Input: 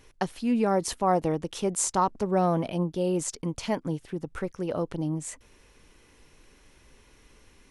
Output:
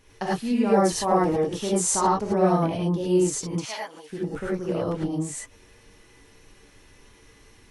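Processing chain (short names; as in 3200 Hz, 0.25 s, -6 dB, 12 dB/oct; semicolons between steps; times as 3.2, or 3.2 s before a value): 3.54–4.1 HPF 1000 Hz 12 dB/oct; non-linear reverb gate 0.13 s rising, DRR -6 dB; gain -3 dB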